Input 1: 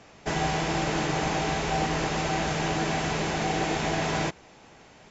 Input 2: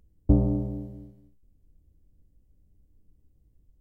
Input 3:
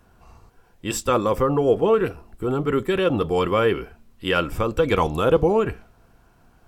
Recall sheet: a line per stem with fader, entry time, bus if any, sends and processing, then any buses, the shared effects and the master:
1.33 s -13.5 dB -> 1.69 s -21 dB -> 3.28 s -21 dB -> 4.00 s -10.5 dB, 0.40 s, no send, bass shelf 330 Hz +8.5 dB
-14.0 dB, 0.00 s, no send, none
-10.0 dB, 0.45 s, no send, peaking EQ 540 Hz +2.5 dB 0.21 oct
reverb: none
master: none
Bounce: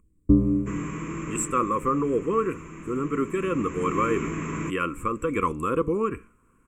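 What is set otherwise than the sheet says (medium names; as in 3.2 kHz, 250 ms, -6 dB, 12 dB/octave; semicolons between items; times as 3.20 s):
stem 2 -14.0 dB -> -2.5 dB; master: extra FFT filter 120 Hz 0 dB, 290 Hz +9 dB, 490 Hz +1 dB, 770 Hz -21 dB, 1.1 kHz +14 dB, 1.6 kHz 0 dB, 2.4 kHz +7 dB, 4.5 kHz -25 dB, 7.8 kHz +13 dB, 13 kHz -3 dB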